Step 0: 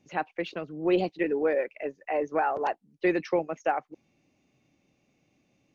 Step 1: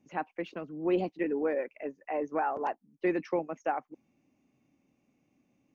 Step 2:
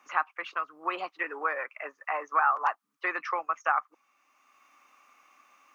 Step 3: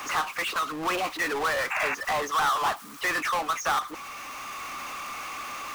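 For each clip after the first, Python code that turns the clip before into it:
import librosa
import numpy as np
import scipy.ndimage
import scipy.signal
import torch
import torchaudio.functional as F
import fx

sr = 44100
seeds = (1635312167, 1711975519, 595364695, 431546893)

y1 = fx.graphic_eq_15(x, sr, hz=(250, 1000, 4000), db=(8, 4, -7))
y1 = y1 * 10.0 ** (-6.0 / 20.0)
y2 = fx.highpass_res(y1, sr, hz=1200.0, q=7.2)
y2 = fx.band_squash(y2, sr, depth_pct=40)
y2 = y2 * 10.0 ** (4.5 / 20.0)
y3 = fx.power_curve(y2, sr, exponent=0.35)
y3 = fx.spec_paint(y3, sr, seeds[0], shape='noise', start_s=1.7, length_s=0.25, low_hz=720.0, high_hz=2800.0, level_db=-22.0)
y3 = y3 * 10.0 ** (-7.0 / 20.0)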